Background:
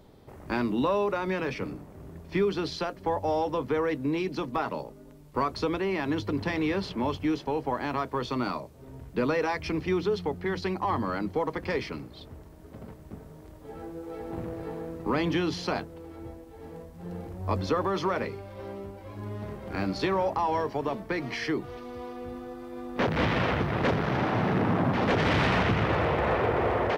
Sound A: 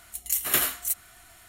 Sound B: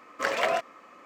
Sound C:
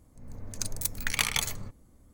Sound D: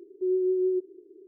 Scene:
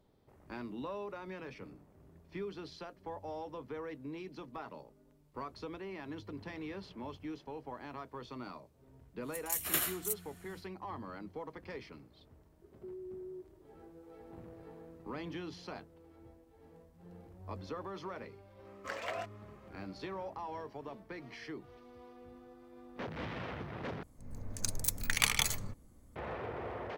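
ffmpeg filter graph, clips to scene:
-filter_complex "[0:a]volume=0.168[s0];[4:a]acompressor=threshold=0.0316:ratio=6:attack=3.2:release=140:knee=1:detection=peak[s1];[s0]asplit=2[s2][s3];[s2]atrim=end=24.034[s4];[3:a]atrim=end=2.13,asetpts=PTS-STARTPTS,volume=0.794[s5];[s3]atrim=start=26.156[s6];[1:a]atrim=end=1.48,asetpts=PTS-STARTPTS,volume=0.355,afade=t=in:d=0.1,afade=t=out:st=1.38:d=0.1,adelay=9200[s7];[s1]atrim=end=1.27,asetpts=PTS-STARTPTS,volume=0.2,afade=t=in:d=0.004:c=hsin,afade=t=out:st=1.266:d=0.004:c=hsin,adelay=12620[s8];[2:a]atrim=end=1.05,asetpts=PTS-STARTPTS,volume=0.211,afade=t=in:d=0.004:c=hsin,afade=t=out:st=1.046:d=0.004:c=hsin,adelay=18650[s9];[s4][s5]acrossfade=d=0.004:c1=hsin:c2=hsin[s10];[s10][s6]acrossfade=d=0.004:c1=hsin:c2=hsin[s11];[s11][s7][s8][s9]amix=inputs=4:normalize=0"

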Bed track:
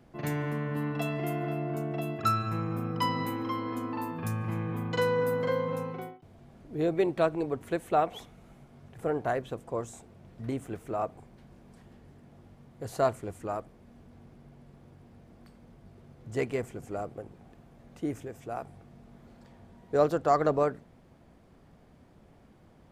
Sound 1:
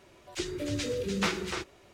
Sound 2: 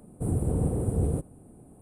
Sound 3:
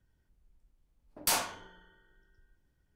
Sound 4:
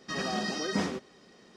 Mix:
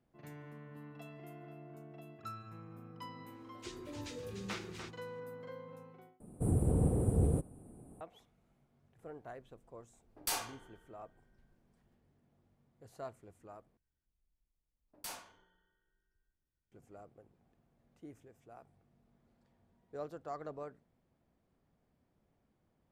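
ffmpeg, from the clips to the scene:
-filter_complex "[3:a]asplit=2[s0][s1];[0:a]volume=0.112[s2];[s0]aecho=1:1:2.5:0.41[s3];[s2]asplit=3[s4][s5][s6];[s4]atrim=end=6.204[s7];[2:a]atrim=end=1.81,asetpts=PTS-STARTPTS,volume=0.668[s8];[s5]atrim=start=8.006:end=13.774[s9];[s1]atrim=end=2.95,asetpts=PTS-STARTPTS,volume=0.15[s10];[s6]atrim=start=16.716[s11];[1:a]atrim=end=1.93,asetpts=PTS-STARTPTS,volume=0.224,afade=t=in:d=0.004:c=hsin,afade=t=out:st=1.926:d=0.004:c=hsin,adelay=3270[s12];[s3]atrim=end=2.95,asetpts=PTS-STARTPTS,volume=0.398,afade=t=in:d=0.004:c=hsin,afade=t=out:st=2.946:d=0.004:c=hsin,adelay=9000[s13];[s7][s8]acrossfade=d=0.004:c1=hsin:c2=hsin[s14];[s14][s9]acrossfade=d=0.004:c1=hsin:c2=hsin[s15];[s15][s10]acrossfade=d=0.004:c1=hsin:c2=hsin[s16];[s16][s11]acrossfade=d=0.004:c1=hsin:c2=hsin[s17];[s17][s12][s13]amix=inputs=3:normalize=0"

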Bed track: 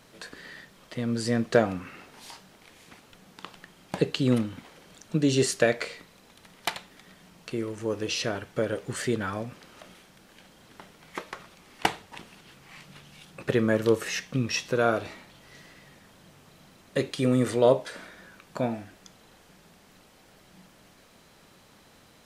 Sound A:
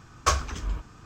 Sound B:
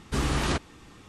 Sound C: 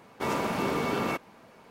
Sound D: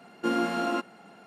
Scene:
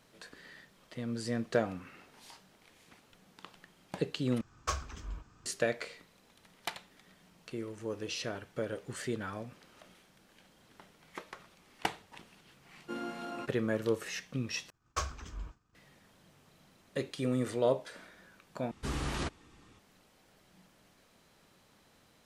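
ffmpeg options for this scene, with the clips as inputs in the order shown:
-filter_complex "[1:a]asplit=2[s0][s1];[0:a]volume=0.376[s2];[s1]agate=range=0.0224:threshold=0.00891:ratio=3:release=100:detection=peak[s3];[s2]asplit=4[s4][s5][s6][s7];[s4]atrim=end=4.414[s8];[s0]atrim=end=1.05,asetpts=PTS-STARTPTS,volume=0.266[s9];[s5]atrim=start=5.456:end=14.704[s10];[s3]atrim=end=1.05,asetpts=PTS-STARTPTS,volume=0.251[s11];[s6]atrim=start=15.746:end=18.714[s12];[2:a]atrim=end=1.08,asetpts=PTS-STARTPTS,volume=0.355[s13];[s7]atrim=start=19.786[s14];[4:a]atrim=end=1.26,asetpts=PTS-STARTPTS,volume=0.224,afade=t=in:d=0.004:c=hsin,afade=t=out:st=1.256:d=0.004:c=hsin,adelay=12650[s15];[s8][s9]acrossfade=d=0.004:c1=hsin:c2=hsin[s16];[s16][s10]acrossfade=d=0.004:c1=hsin:c2=hsin[s17];[s17][s11]acrossfade=d=0.004:c1=hsin:c2=hsin[s18];[s18][s12]acrossfade=d=0.004:c1=hsin:c2=hsin[s19];[s19][s13]acrossfade=d=0.004:c1=hsin:c2=hsin[s20];[s20][s14]acrossfade=d=0.004:c1=hsin:c2=hsin[s21];[s21][s15]amix=inputs=2:normalize=0"

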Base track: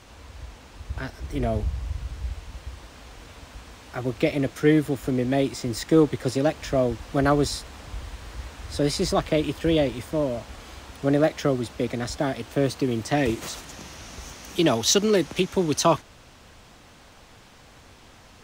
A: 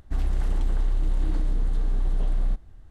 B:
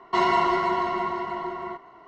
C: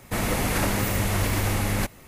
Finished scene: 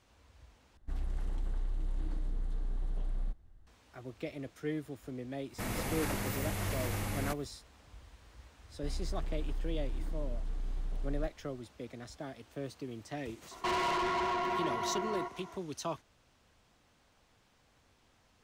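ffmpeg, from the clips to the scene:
-filter_complex "[1:a]asplit=2[s0][s1];[0:a]volume=0.126[s2];[2:a]asoftclip=type=tanh:threshold=0.0422[s3];[s2]asplit=2[s4][s5];[s4]atrim=end=0.774[s6];[s0]atrim=end=2.9,asetpts=PTS-STARTPTS,volume=0.266[s7];[s5]atrim=start=3.666[s8];[3:a]atrim=end=2.07,asetpts=PTS-STARTPTS,volume=0.266,afade=t=in:d=0.1,afade=t=out:st=1.97:d=0.1,adelay=5470[s9];[s1]atrim=end=2.9,asetpts=PTS-STARTPTS,volume=0.224,afade=t=in:d=0.004:c=hsin,afade=t=out:st=2.896:d=0.004:c=hsin,adelay=8720[s10];[s3]atrim=end=2.07,asetpts=PTS-STARTPTS,volume=0.794,afade=t=in:d=0.004:c=hsin,afade=t=out:st=2.066:d=0.004:c=hsin,adelay=13510[s11];[s6][s7]acrossfade=d=0.004:c1=hsin:c2=hsin[s12];[s12][s8]acrossfade=d=0.004:c1=hsin:c2=hsin[s13];[s13][s9][s10][s11]amix=inputs=4:normalize=0"

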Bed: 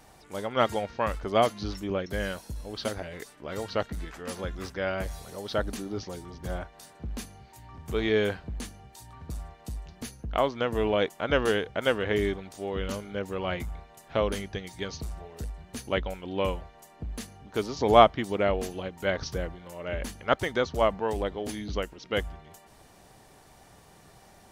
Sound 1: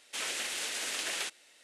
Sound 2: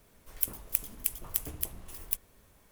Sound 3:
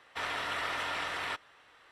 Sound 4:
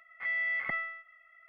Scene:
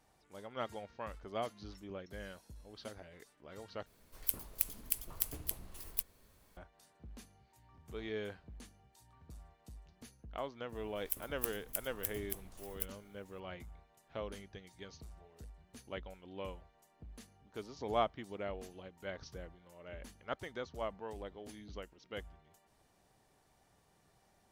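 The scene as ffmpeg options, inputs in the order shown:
-filter_complex "[2:a]asplit=2[s0][s1];[0:a]volume=0.158[s2];[s0]equalizer=f=4400:t=o:w=0.32:g=5.5[s3];[s2]asplit=2[s4][s5];[s4]atrim=end=3.864[s6];[s3]atrim=end=2.71,asetpts=PTS-STARTPTS,volume=0.596[s7];[s5]atrim=start=6.566[s8];[s1]atrim=end=2.71,asetpts=PTS-STARTPTS,volume=0.376,afade=t=in:d=0.004:c=hsin,afade=t=out:st=2.706:d=0.004:c=hsin,adelay=10690[s9];[s6][s7]acrossfade=d=0.004:c1=hsin:c2=hsin[s10];[s10][s8]acrossfade=d=0.004:c1=hsin:c2=hsin[s11];[s11][s9]amix=inputs=2:normalize=0"

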